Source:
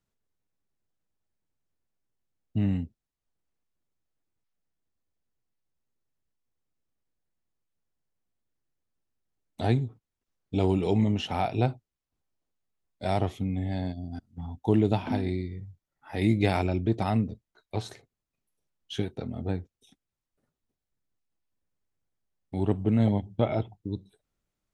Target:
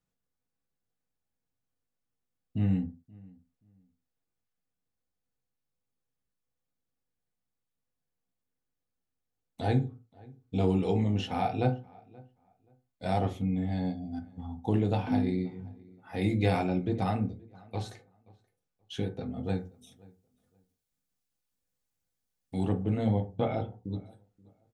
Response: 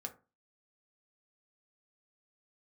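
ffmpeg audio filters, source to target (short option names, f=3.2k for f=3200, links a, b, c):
-filter_complex "[0:a]asettb=1/sr,asplit=3[a][b][c];[a]atrim=end=19.444[d];[b]atrim=start=19.44:end=22.69,asetpts=PTS-STARTPTS,afade=t=in:d=0.004:c=qsin,afade=t=out:st=3.246:d=0.004:c=qsin,highshelf=f=3k:g=11.5[e];[c]atrim=start=22.686[f];[d][e]acrossfade=d=0.004:c1=hsin:c2=qsin[g];[g][f]acrossfade=d=0.004:c1=qsin:c2=hsin,asplit=2[h][i];[i]adelay=528,lowpass=f=2k:p=1,volume=-24dB,asplit=2[j][k];[k]adelay=528,lowpass=f=2k:p=1,volume=0.22[l];[h][j][l]amix=inputs=3:normalize=0[m];[1:a]atrim=start_sample=2205,afade=t=out:st=0.24:d=0.01,atrim=end_sample=11025[n];[m][n]afir=irnorm=-1:irlink=0"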